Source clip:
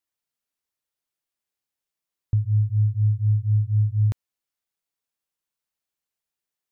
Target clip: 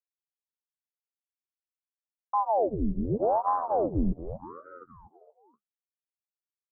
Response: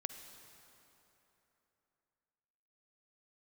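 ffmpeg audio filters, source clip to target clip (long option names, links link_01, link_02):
-filter_complex "[0:a]highpass=45,agate=range=-33dB:threshold=-22dB:ratio=3:detection=peak,alimiter=limit=-24dB:level=0:latency=1:release=112,aeval=exprs='sgn(val(0))*max(abs(val(0))-0.00237,0)':channel_layout=same,lowpass=frequency=330:width_type=q:width=3.9,asettb=1/sr,asplit=3[link_01][link_02][link_03];[link_01]atrim=end=3.164[link_04];[link_02]atrim=start=3.16:end=3.95,asetpts=PTS-STARTPTS,afade=type=in:duration=0.004:curve=qsin,afade=type=out:start_time=0.786:duration=0.004:curve=qsin,aeval=exprs='0.0708*(cos(1*acos(clip(val(0)/0.0708,-1,1)))-cos(1*PI/2))+0.00316*(cos(6*acos(clip(val(0)/0.0708,-1,1)))-cos(6*PI/2))':channel_layout=same[link_05];[link_03]atrim=start=3.946[link_06];[link_04][link_05]acrossfade=duration=0.004:curve1=hsin:curve2=qsin[link_07];[link_07][link_06]acrossfade=duration=0.004:curve1=qsin:curve2=hsin,asplit=2[link_08][link_09];[link_09]asplit=6[link_10][link_11][link_12][link_13][link_14][link_15];[link_10]adelay=236,afreqshift=86,volume=-13dB[link_16];[link_11]adelay=472,afreqshift=172,volume=-17.9dB[link_17];[link_12]adelay=708,afreqshift=258,volume=-22.8dB[link_18];[link_13]adelay=944,afreqshift=344,volume=-27.6dB[link_19];[link_14]adelay=1180,afreqshift=430,volume=-32.5dB[link_20];[link_15]adelay=1416,afreqshift=516,volume=-37.4dB[link_21];[link_16][link_17][link_18][link_19][link_20][link_21]amix=inputs=6:normalize=0[link_22];[link_08][link_22]amix=inputs=2:normalize=0,flanger=delay=8.3:depth=8.2:regen=-39:speed=1.2:shape=sinusoidal,aeval=exprs='val(0)*sin(2*PI*500*n/s+500*0.85/0.85*sin(2*PI*0.85*n/s))':channel_layout=same,volume=8dB"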